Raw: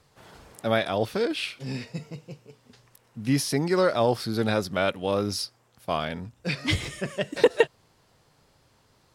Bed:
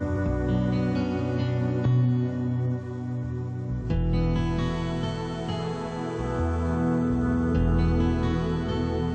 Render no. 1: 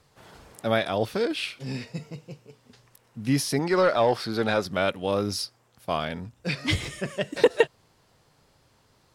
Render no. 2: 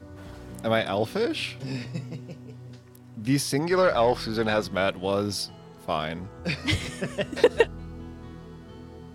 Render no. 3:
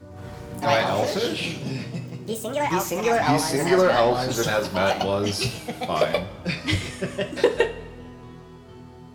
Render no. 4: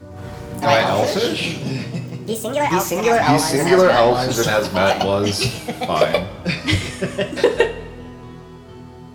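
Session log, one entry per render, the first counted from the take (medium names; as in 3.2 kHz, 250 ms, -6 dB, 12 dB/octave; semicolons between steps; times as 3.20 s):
3.59–4.66 s: overdrive pedal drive 11 dB, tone 2.5 kHz, clips at -10.5 dBFS
add bed -17 dB
two-slope reverb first 0.33 s, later 1.6 s, from -16 dB, DRR 3.5 dB; ever faster or slower copies 110 ms, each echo +4 st, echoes 2
trim +5.5 dB; peak limiter -1 dBFS, peak gain reduction 2 dB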